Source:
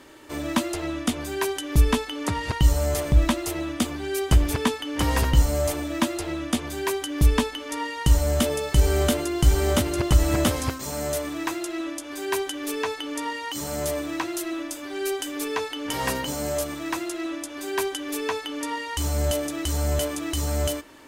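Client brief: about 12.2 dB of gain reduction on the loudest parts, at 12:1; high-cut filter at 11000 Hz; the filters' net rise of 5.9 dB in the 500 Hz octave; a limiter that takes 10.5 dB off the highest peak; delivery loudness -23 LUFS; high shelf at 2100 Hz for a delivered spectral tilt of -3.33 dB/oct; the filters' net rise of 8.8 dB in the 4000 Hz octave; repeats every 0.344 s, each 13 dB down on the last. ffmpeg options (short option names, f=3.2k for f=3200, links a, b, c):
-af "lowpass=11k,equalizer=f=500:t=o:g=7,highshelf=f=2.1k:g=8,equalizer=f=4k:t=o:g=4,acompressor=threshold=-23dB:ratio=12,alimiter=limit=-18dB:level=0:latency=1,aecho=1:1:344|688|1032:0.224|0.0493|0.0108,volume=5dB"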